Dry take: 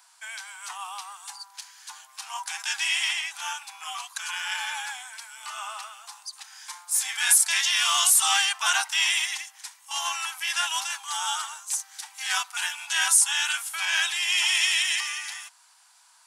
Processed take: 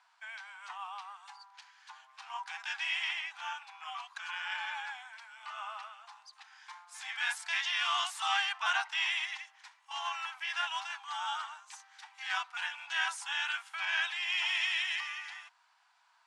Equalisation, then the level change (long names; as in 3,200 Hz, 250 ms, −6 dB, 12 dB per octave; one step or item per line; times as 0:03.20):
low-pass filter 2,700 Hz 12 dB per octave
−5.0 dB